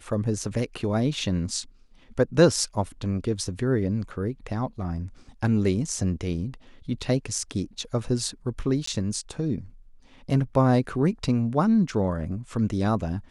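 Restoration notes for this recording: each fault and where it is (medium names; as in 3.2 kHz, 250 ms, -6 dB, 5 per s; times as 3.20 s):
8.86–8.87 s: dropout 14 ms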